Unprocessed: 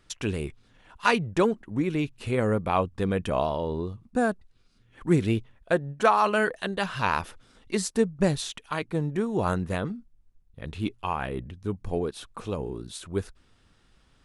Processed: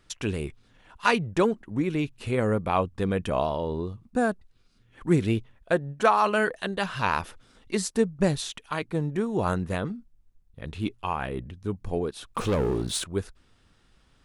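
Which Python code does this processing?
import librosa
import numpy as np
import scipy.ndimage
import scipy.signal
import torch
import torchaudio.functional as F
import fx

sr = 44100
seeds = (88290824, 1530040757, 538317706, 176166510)

y = fx.leveller(x, sr, passes=3, at=(12.33, 13.04))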